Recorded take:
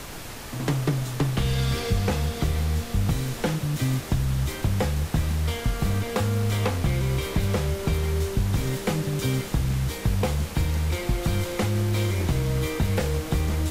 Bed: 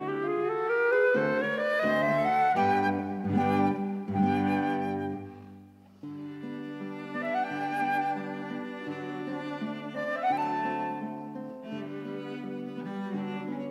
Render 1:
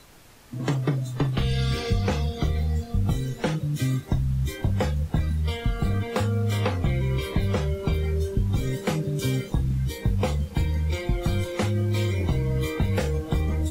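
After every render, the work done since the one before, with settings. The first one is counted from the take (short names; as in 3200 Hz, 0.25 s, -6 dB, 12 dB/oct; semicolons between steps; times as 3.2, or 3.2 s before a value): noise print and reduce 14 dB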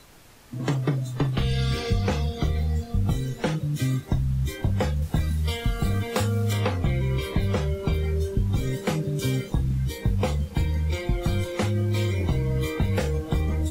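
5.02–6.53 high shelf 4200 Hz +8.5 dB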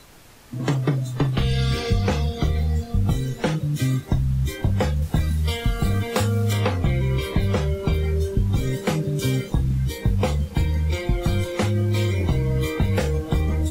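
gain +3 dB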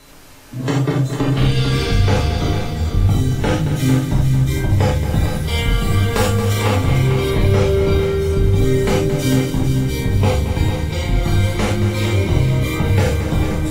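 multi-head echo 0.225 s, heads first and second, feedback 44%, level -10 dB; non-linear reverb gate 0.11 s flat, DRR -4 dB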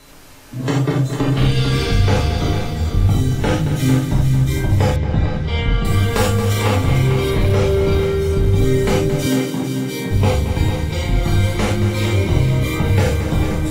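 4.96–5.85 air absorption 180 m; 7.18–8.48 hard clip -9.5 dBFS; 9.26–10.11 HPF 160 Hz 24 dB/oct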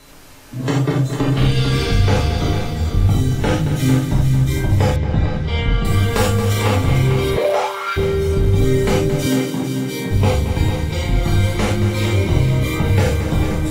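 7.36–7.96 resonant high-pass 450 Hz -> 1600 Hz, resonance Q 5.1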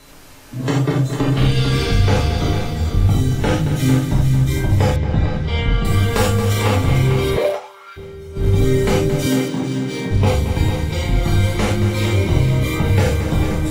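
7.47–8.47 dip -16 dB, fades 0.13 s; 9.48–10.27 decimation joined by straight lines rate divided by 3×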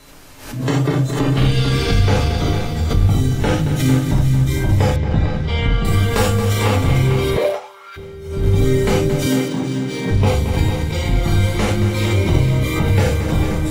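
backwards sustainer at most 86 dB/s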